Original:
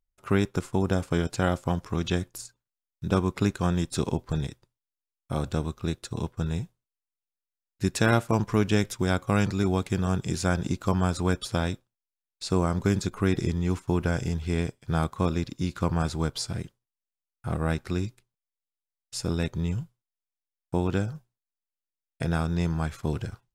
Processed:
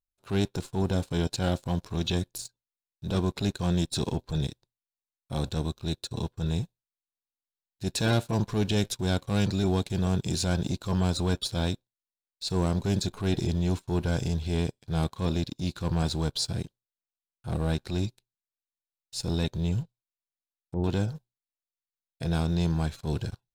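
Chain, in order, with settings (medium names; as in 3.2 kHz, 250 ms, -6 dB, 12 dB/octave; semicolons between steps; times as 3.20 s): waveshaping leveller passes 2; graphic EQ with 31 bands 1.25 kHz -9 dB, 2 kHz -7 dB, 4 kHz +9 dB; 19.82–20.84 s: low-pass that closes with the level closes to 600 Hz, closed at -22.5 dBFS; transient shaper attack -8 dB, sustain -3 dB; trim -5 dB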